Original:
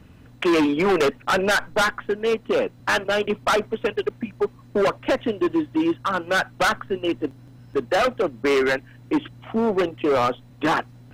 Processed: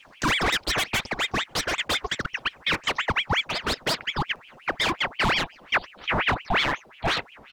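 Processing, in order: gliding tape speed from 195% -> 101%; peaking EQ 390 Hz +4.5 dB; echo from a far wall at 140 m, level -30 dB; ring modulator with a swept carrier 1.6 kHz, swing 80%, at 5.6 Hz; trim -2.5 dB

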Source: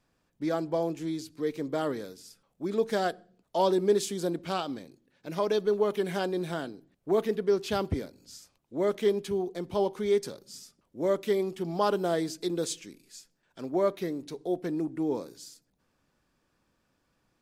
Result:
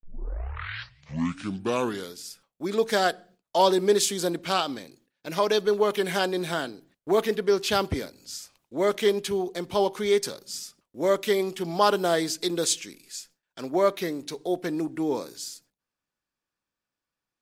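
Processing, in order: tape start-up on the opening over 2.23 s; gate with hold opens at -53 dBFS; tilt shelf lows -5 dB, about 740 Hz; trim +5.5 dB

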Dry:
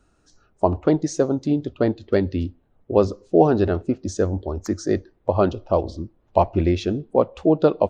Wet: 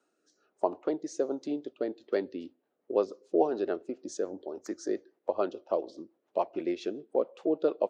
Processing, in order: rotary cabinet horn 1.2 Hz, later 7 Hz, at 1.96 s; in parallel at -2 dB: compression, threshold -27 dBFS, peak gain reduction 16 dB; on the sum: ladder high-pass 270 Hz, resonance 20%; trim -5.5 dB

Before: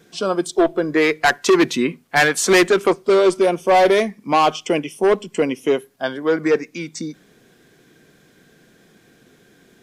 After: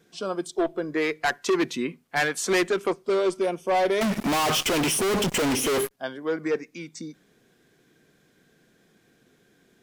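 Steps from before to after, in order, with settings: 4.01–5.91 s: fuzz box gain 47 dB, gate -51 dBFS; trim -9 dB

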